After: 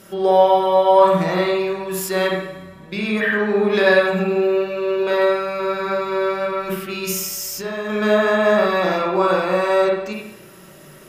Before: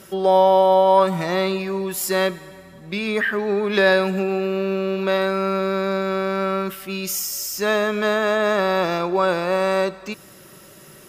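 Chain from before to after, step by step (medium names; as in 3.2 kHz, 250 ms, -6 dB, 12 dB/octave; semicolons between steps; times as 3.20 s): 6.47–7.90 s: compressor with a negative ratio -25 dBFS, ratio -1; reverberation RT60 0.70 s, pre-delay 33 ms, DRR -2.5 dB; trim -2 dB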